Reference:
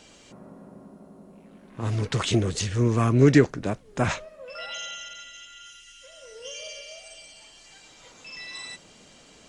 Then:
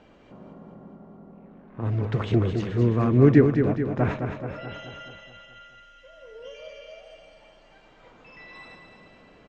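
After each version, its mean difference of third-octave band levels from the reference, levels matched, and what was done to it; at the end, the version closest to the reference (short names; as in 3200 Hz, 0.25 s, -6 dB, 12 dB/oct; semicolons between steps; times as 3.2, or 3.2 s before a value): 6.5 dB: LPF 1600 Hz 12 dB/oct; dynamic EQ 1100 Hz, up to -4 dB, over -44 dBFS, Q 1.1; feedback echo 0.214 s, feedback 58%, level -6.5 dB; gain +1 dB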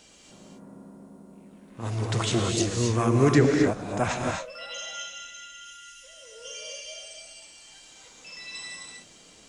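4.0 dB: high shelf 4900 Hz +8 dB; non-linear reverb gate 0.29 s rising, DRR 1 dB; dynamic EQ 770 Hz, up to +6 dB, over -38 dBFS, Q 1.1; gain -5 dB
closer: second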